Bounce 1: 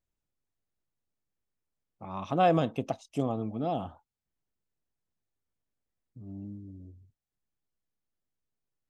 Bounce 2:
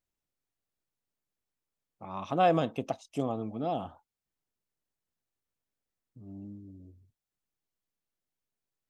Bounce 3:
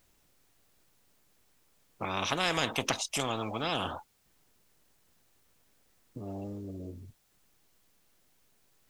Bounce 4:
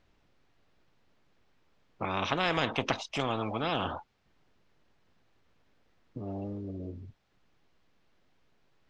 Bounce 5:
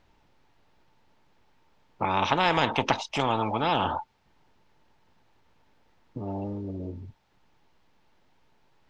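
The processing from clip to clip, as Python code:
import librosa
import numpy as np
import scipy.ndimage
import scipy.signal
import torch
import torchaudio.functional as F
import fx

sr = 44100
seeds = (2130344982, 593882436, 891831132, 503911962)

y1 = fx.low_shelf(x, sr, hz=180.0, db=-6.0)
y2 = fx.spectral_comp(y1, sr, ratio=4.0)
y3 = fx.air_absorb(y2, sr, metres=210.0)
y3 = y3 * 10.0 ** (2.5 / 20.0)
y4 = fx.peak_eq(y3, sr, hz=890.0, db=11.0, octaves=0.2)
y4 = y4 * 10.0 ** (4.0 / 20.0)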